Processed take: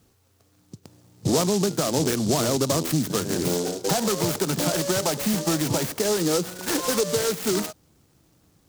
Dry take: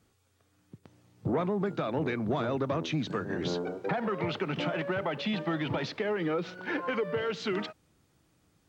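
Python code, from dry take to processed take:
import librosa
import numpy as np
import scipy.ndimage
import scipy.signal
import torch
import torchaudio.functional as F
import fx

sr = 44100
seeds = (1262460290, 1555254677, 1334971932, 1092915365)

y = fx.noise_mod_delay(x, sr, seeds[0], noise_hz=5600.0, depth_ms=0.13)
y = y * 10.0 ** (7.5 / 20.0)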